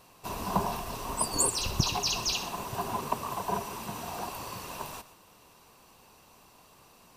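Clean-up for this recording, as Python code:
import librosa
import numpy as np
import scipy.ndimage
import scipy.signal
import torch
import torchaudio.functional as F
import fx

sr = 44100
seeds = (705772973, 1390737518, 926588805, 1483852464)

y = fx.fix_interpolate(x, sr, at_s=(1.66,), length_ms=1.3)
y = fx.fix_echo_inverse(y, sr, delay_ms=124, level_db=-15.5)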